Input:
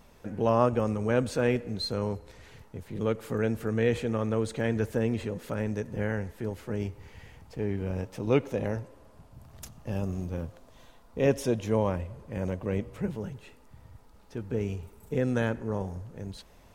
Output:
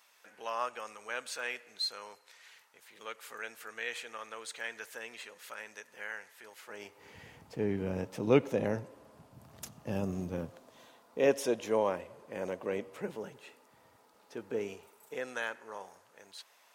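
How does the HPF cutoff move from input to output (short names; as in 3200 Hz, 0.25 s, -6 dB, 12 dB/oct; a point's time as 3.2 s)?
6.51 s 1400 Hz
6.96 s 620 Hz
7.16 s 150 Hz
10.31 s 150 Hz
11.36 s 380 Hz
14.59 s 380 Hz
15.4 s 1000 Hz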